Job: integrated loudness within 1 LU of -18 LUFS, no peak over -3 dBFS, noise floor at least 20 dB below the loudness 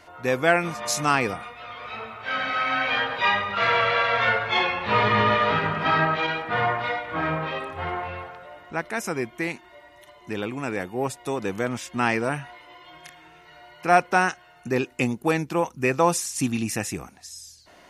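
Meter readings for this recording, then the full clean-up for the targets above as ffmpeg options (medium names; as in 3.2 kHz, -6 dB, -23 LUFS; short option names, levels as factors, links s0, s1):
loudness -24.0 LUFS; peak level -4.0 dBFS; loudness target -18.0 LUFS
-> -af "volume=2,alimiter=limit=0.708:level=0:latency=1"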